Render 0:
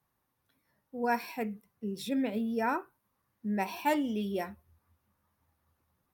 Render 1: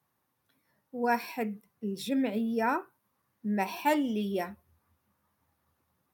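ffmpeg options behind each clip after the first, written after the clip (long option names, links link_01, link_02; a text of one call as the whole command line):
ffmpeg -i in.wav -af "highpass=100,volume=2dB" out.wav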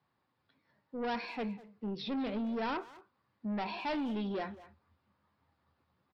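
ffmpeg -i in.wav -filter_complex "[0:a]aresample=11025,asoftclip=type=tanh:threshold=-32dB,aresample=44100,asplit=2[link_01][link_02];[link_02]adelay=200,highpass=300,lowpass=3400,asoftclip=type=hard:threshold=-39dB,volume=-13dB[link_03];[link_01][link_03]amix=inputs=2:normalize=0" out.wav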